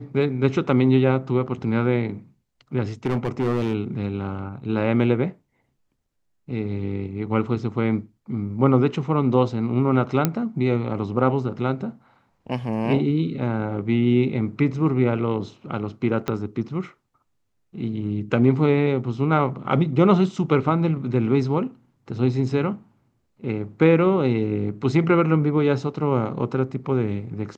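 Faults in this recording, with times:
0:03.06–0:03.75: clipping −17.5 dBFS
0:10.25: click −5 dBFS
0:16.28: click −11 dBFS

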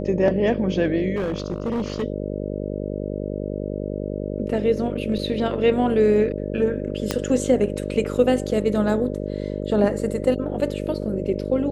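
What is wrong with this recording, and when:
mains buzz 50 Hz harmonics 12 −28 dBFS
0:01.15–0:02.04: clipping −20.5 dBFS
0:07.11: click −7 dBFS

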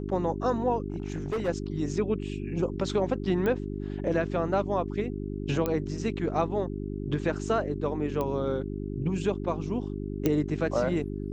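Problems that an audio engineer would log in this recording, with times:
mains hum 50 Hz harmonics 8 −34 dBFS
0:00.90–0:01.49: clipping −26 dBFS
0:03.46: click −18 dBFS
0:05.66: click −15 dBFS
0:08.21: click −18 dBFS
0:10.26: click −12 dBFS

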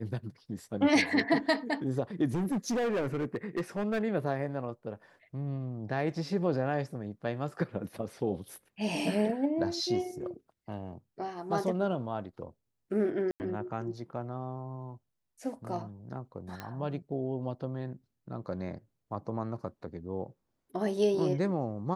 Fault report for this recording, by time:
0:02.33–0:04.02: clipping −27 dBFS
0:13.31–0:13.40: drop-out 89 ms
0:16.60: click −23 dBFS

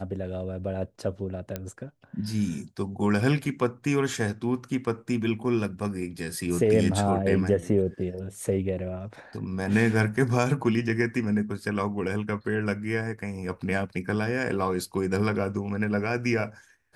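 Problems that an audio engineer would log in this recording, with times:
0:01.56: click −16 dBFS

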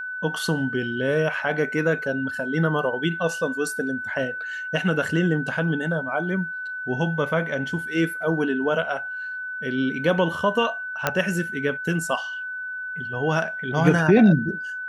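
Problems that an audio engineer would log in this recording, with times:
whistle 1,500 Hz −29 dBFS
0:11.07: click −5 dBFS

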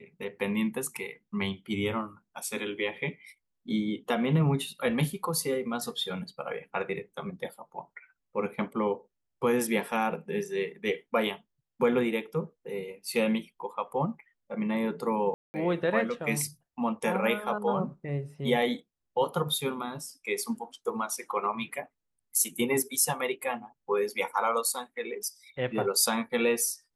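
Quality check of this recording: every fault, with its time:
0:15.34–0:15.54: drop-out 200 ms

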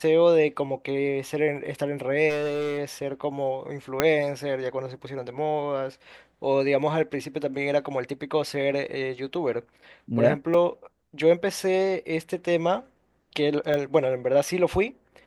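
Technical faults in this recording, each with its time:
0:02.29–0:02.79: clipping −23 dBFS
0:04.00: click −5 dBFS
0:08.88: drop-out 3.1 ms
0:10.54: drop-out 3.6 ms
0:13.74: click −15 dBFS

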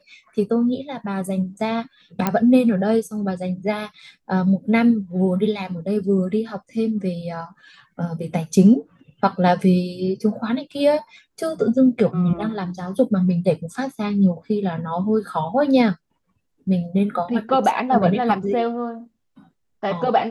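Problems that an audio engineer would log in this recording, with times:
0:02.27: click −6 dBFS

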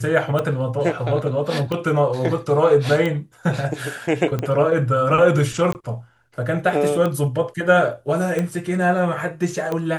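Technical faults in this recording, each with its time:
scratch tick 45 rpm −12 dBFS
0:05.73–0:05.75: drop-out 19 ms

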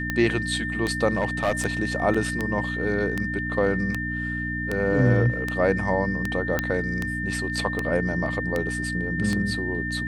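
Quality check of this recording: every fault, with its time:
mains hum 60 Hz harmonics 5 −31 dBFS
scratch tick 78 rpm −12 dBFS
whistle 1,800 Hz −29 dBFS
0:01.08–0:01.66: clipping −17.5 dBFS
0:02.14: drop-out 4.7 ms
0:06.59: click −9 dBFS

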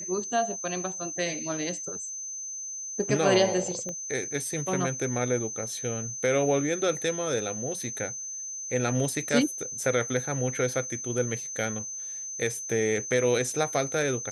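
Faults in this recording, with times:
whistle 6,200 Hz −34 dBFS
0:03.89: click −23 dBFS

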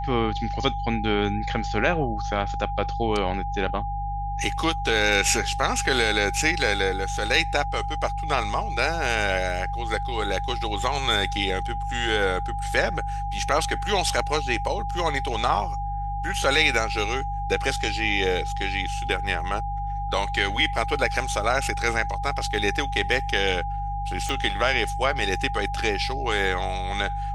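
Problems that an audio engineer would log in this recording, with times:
mains hum 50 Hz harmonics 3 −31 dBFS
whistle 810 Hz −29 dBFS
0:24.29: click

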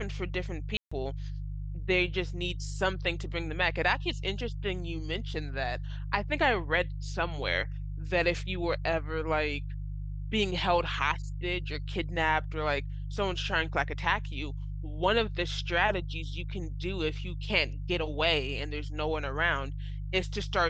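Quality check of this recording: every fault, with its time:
mains hum 50 Hz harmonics 3 −36 dBFS
0:00.77–0:00.92: drop-out 145 ms

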